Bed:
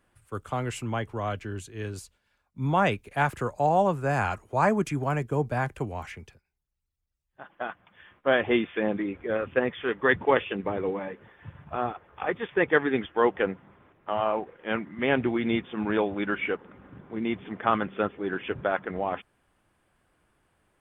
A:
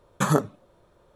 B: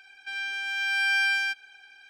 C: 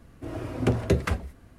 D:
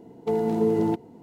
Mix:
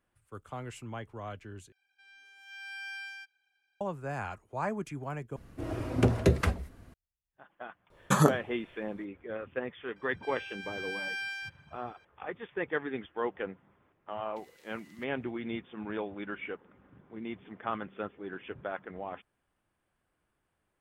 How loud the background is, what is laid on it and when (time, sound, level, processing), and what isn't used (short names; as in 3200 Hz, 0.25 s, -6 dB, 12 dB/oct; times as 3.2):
bed -10.5 dB
1.72 replace with B -17.5 dB + spectral noise reduction 7 dB
5.36 replace with C -1 dB
7.9 add A -1.5 dB
9.96 add B -12.5 dB
14.09 add D -11 dB + brick-wall FIR high-pass 1800 Hz